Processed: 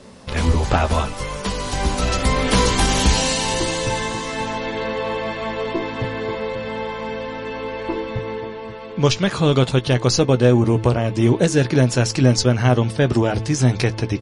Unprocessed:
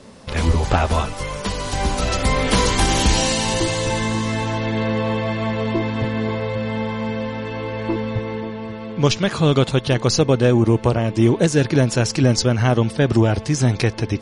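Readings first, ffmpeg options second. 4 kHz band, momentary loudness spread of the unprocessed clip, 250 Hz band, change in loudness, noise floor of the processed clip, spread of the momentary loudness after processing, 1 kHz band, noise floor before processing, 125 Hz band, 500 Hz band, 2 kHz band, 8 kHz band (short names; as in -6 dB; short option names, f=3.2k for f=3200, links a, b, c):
0.0 dB, 9 LU, -1.0 dB, 0.0 dB, -32 dBFS, 11 LU, 0.0 dB, -33 dBFS, 0.0 dB, 0.0 dB, 0.0 dB, +0.5 dB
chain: -filter_complex "[0:a]asplit=2[a][b];[b]adelay=16,volume=-12dB[c];[a][c]amix=inputs=2:normalize=0,bandreject=f=109.7:t=h:w=4,bandreject=f=219.4:t=h:w=4,bandreject=f=329.1:t=h:w=4"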